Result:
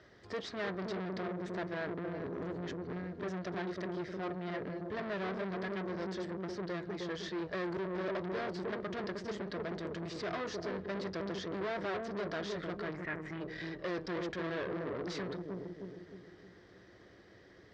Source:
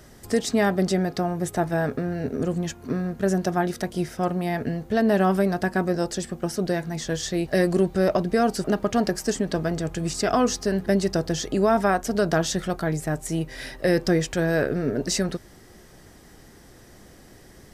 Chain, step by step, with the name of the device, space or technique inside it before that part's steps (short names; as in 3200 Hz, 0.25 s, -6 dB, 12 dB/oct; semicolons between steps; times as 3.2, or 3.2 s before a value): analogue delay pedal into a guitar amplifier (analogue delay 0.31 s, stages 1024, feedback 49%, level -3.5 dB; tube stage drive 28 dB, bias 0.55; speaker cabinet 110–4300 Hz, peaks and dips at 150 Hz -10 dB, 240 Hz -10 dB, 820 Hz -6 dB, 1800 Hz +3 dB, 2700 Hz -4 dB); 12.94–13.4 graphic EQ 500/2000/4000/8000 Hz -5/+11/-7/-10 dB; gain -4.5 dB